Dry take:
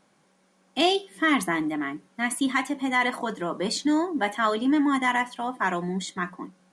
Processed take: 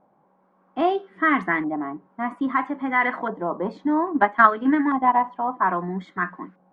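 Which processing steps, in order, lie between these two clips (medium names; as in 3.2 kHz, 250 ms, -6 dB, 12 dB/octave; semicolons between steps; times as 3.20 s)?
LFO low-pass saw up 0.61 Hz 800–1800 Hz; 4.06–5.24 s: transient shaper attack +8 dB, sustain -5 dB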